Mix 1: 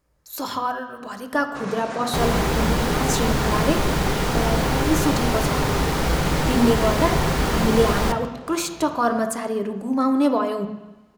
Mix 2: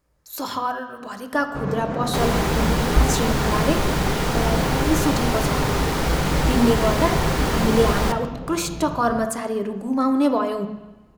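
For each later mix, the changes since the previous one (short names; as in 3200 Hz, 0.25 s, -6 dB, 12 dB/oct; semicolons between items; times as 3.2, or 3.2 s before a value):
first sound: add tilt -4.5 dB/oct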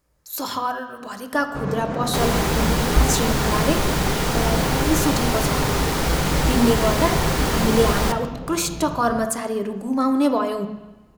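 master: add high shelf 4300 Hz +5 dB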